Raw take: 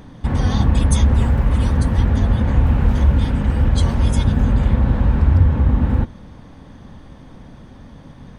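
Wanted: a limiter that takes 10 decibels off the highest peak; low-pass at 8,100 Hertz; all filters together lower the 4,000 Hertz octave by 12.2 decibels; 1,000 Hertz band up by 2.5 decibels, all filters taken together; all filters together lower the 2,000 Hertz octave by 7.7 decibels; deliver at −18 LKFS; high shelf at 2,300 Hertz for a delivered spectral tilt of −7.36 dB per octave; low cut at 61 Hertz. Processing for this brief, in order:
high-pass filter 61 Hz
low-pass filter 8,100 Hz
parametric band 1,000 Hz +6.5 dB
parametric band 2,000 Hz −8.5 dB
high-shelf EQ 2,300 Hz −8 dB
parametric band 4,000 Hz −5.5 dB
level +5.5 dB
brickwall limiter −9 dBFS

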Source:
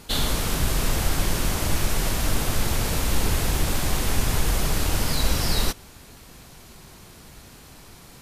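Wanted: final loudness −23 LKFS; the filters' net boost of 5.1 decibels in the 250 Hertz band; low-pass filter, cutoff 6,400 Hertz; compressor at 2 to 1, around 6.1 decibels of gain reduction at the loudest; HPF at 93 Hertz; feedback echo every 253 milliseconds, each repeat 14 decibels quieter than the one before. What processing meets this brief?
high-pass filter 93 Hz
low-pass filter 6,400 Hz
parametric band 250 Hz +7 dB
downward compressor 2 to 1, threshold −33 dBFS
repeating echo 253 ms, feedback 20%, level −14 dB
level +8.5 dB

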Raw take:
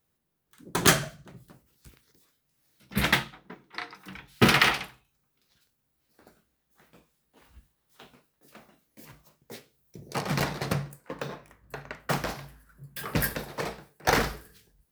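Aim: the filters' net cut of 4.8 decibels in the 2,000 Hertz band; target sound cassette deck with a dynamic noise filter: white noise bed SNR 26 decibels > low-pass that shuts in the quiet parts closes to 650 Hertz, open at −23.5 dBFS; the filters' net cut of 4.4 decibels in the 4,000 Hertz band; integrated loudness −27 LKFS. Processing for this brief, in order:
parametric band 2,000 Hz −5 dB
parametric band 4,000 Hz −4 dB
white noise bed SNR 26 dB
low-pass that shuts in the quiet parts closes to 650 Hz, open at −23.5 dBFS
level +2.5 dB

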